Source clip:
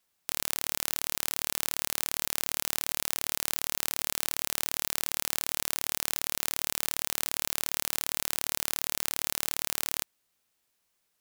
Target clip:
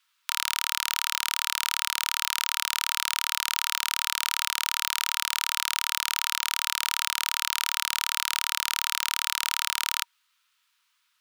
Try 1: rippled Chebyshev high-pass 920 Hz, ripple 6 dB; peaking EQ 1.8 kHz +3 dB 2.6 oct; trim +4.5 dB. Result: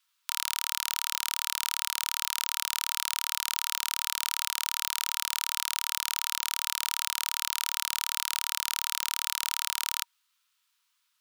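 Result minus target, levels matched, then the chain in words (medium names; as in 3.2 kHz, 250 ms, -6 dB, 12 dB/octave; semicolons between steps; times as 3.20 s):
2 kHz band -3.5 dB
rippled Chebyshev high-pass 920 Hz, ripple 6 dB; peaking EQ 1.8 kHz +10 dB 2.6 oct; trim +4.5 dB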